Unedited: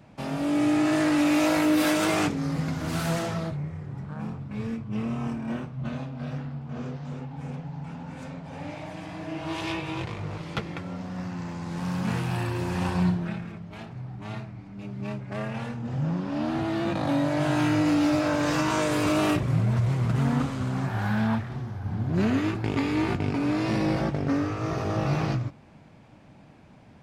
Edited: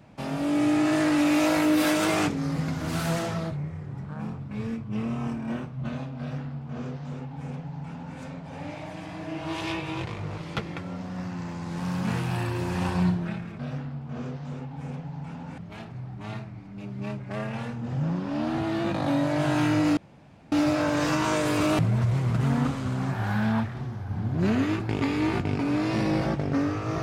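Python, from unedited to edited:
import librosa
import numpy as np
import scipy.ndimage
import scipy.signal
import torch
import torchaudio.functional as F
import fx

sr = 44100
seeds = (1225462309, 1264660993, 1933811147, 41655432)

y = fx.edit(x, sr, fx.duplicate(start_s=6.19, length_s=1.99, to_s=13.59),
    fx.insert_room_tone(at_s=17.98, length_s=0.55),
    fx.cut(start_s=19.25, length_s=0.29), tone=tone)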